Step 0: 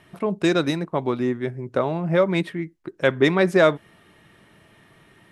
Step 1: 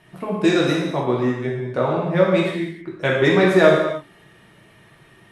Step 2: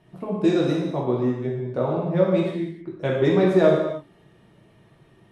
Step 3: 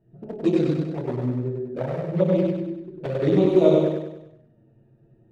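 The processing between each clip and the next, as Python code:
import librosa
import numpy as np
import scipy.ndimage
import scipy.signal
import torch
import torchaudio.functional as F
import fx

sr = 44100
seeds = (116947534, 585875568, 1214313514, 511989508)

y1 = fx.rev_gated(x, sr, seeds[0], gate_ms=340, shape='falling', drr_db=-4.5)
y1 = y1 * 10.0 ** (-2.5 / 20.0)
y2 = fx.lowpass(y1, sr, hz=2900.0, slope=6)
y2 = fx.peak_eq(y2, sr, hz=1800.0, db=-9.5, octaves=1.7)
y2 = y2 * 10.0 ** (-1.5 / 20.0)
y3 = fx.wiener(y2, sr, points=41)
y3 = fx.env_flanger(y3, sr, rest_ms=9.3, full_db=-15.5)
y3 = fx.echo_feedback(y3, sr, ms=98, feedback_pct=47, wet_db=-3.0)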